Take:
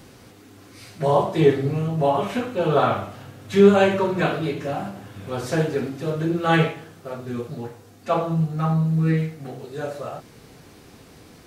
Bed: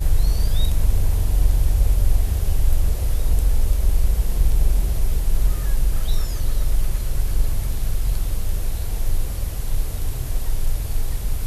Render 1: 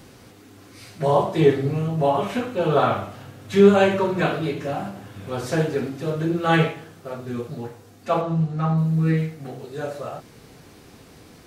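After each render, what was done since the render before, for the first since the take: 8.21–8.78 s: distance through air 61 m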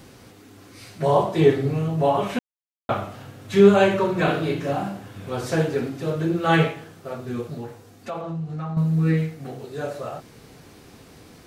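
2.39–2.89 s: mute; 4.24–4.97 s: doubling 36 ms -4.5 dB; 7.57–8.77 s: compression 4:1, threshold -28 dBFS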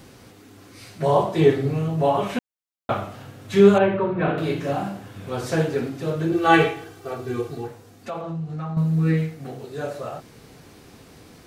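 3.78–4.38 s: distance through air 460 m; 6.32–7.68 s: comb 2.6 ms, depth 98%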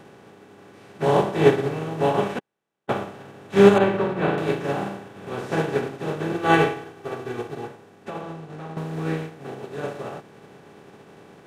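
spectral levelling over time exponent 0.4; upward expansion 2.5:1, over -32 dBFS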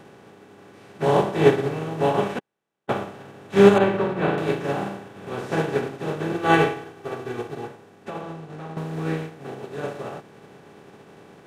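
no audible change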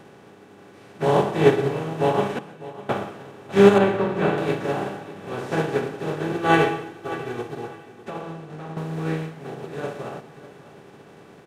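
feedback delay 601 ms, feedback 27%, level -17 dB; plate-style reverb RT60 0.52 s, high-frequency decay 0.95×, pre-delay 105 ms, DRR 14.5 dB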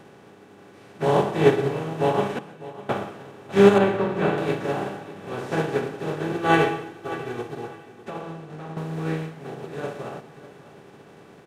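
trim -1 dB

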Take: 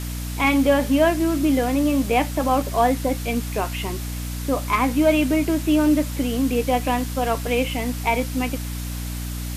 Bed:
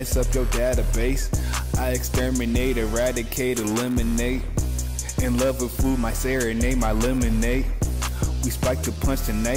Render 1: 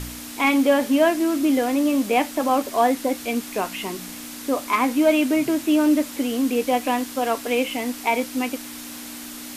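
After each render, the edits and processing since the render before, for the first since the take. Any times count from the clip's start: de-hum 60 Hz, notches 3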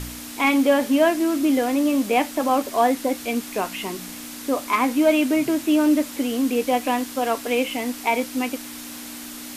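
no audible change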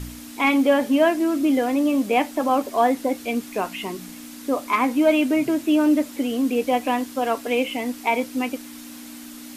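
noise reduction 6 dB, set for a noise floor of -36 dBFS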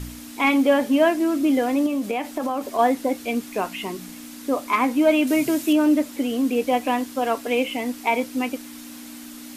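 1.86–2.79 s: compression 10:1, threshold -20 dBFS; 5.27–5.73 s: treble shelf 3.8 kHz +9.5 dB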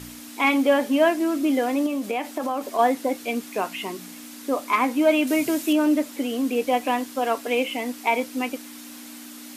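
high-pass 250 Hz 6 dB/octave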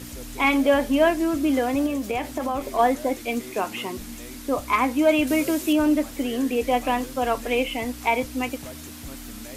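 add bed -18 dB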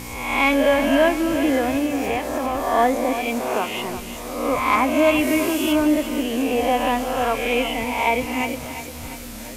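reverse spectral sustain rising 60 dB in 0.96 s; two-band feedback delay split 430 Hz, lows 174 ms, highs 347 ms, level -11 dB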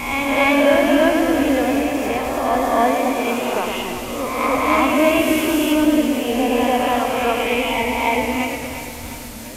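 reverse echo 291 ms -4.5 dB; modulated delay 109 ms, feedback 57%, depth 77 cents, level -6 dB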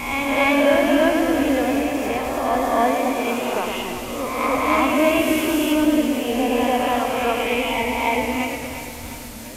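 trim -2 dB

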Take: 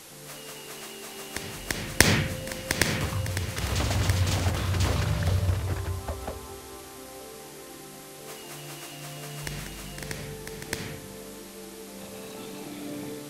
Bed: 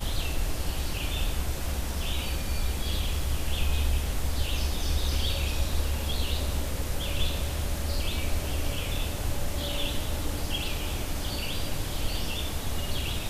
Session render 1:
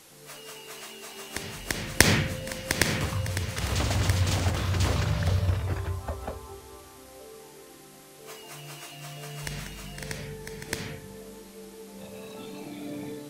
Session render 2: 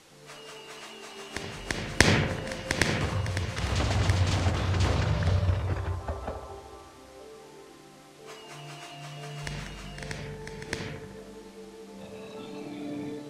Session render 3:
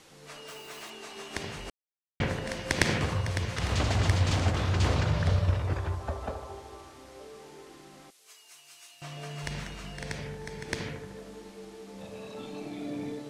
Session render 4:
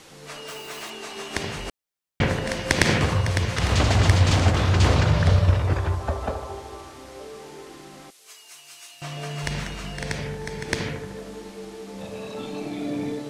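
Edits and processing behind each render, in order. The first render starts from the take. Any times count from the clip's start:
noise print and reduce 6 dB
distance through air 61 m; feedback echo behind a band-pass 76 ms, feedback 71%, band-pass 650 Hz, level -7.5 dB
0.48–0.90 s: zero-crossing glitches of -47.5 dBFS; 1.70–2.20 s: mute; 8.10–9.02 s: differentiator
trim +7.5 dB; peak limiter -1 dBFS, peak gain reduction 2.5 dB

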